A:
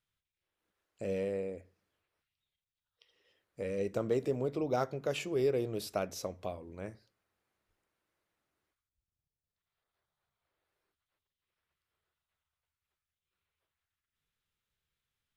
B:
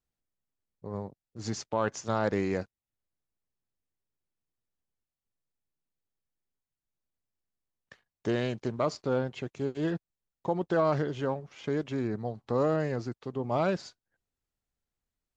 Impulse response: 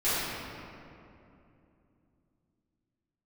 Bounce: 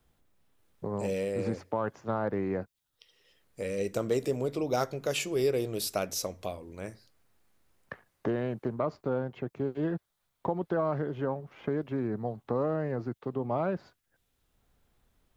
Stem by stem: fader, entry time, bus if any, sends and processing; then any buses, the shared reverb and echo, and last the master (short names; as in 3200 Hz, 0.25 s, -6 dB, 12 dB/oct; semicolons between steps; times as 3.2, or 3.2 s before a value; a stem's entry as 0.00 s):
+2.5 dB, 0.00 s, no send, dry
-1.5 dB, 0.00 s, no send, LPF 1400 Hz 12 dB/oct; three-band squash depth 70%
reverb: off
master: high shelf 3700 Hz +10.5 dB